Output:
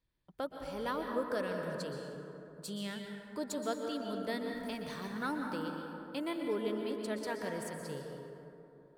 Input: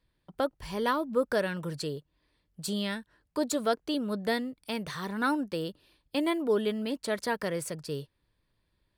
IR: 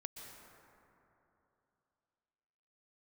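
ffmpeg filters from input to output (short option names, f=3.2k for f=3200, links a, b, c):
-filter_complex "[0:a]asettb=1/sr,asplit=3[a][b][c];[a]atrim=end=4.474[d];[b]atrim=start=4.47:end=5.56,asetpts=PTS-STARTPTS,afade=t=in:d=0.004:c=qsin,afade=t=out:st=1.086:d=0.004:c=qsin,aeval=exprs='val(0)+0.5*0.00447*sgn(val(0))':c=same[e];[c]atrim=start=5.556[f];[d][e]acrossfade=d=0.004:c1=hsin:c2=qsin[g];[g][f]acrossfade=d=0.004:c1=qsin:c2=hsin[h];[1:a]atrim=start_sample=2205[i];[h][i]afir=irnorm=-1:irlink=0,volume=-4dB"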